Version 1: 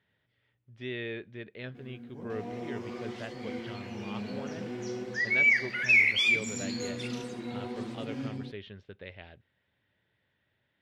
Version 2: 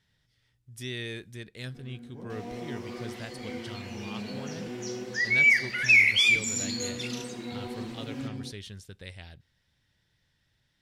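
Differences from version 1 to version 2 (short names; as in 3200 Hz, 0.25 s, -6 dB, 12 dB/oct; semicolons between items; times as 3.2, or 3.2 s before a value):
speech: remove speaker cabinet 120–3000 Hz, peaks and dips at 150 Hz -7 dB, 410 Hz +4 dB, 600 Hz +5 dB; second sound: add high shelf 4100 Hz +12 dB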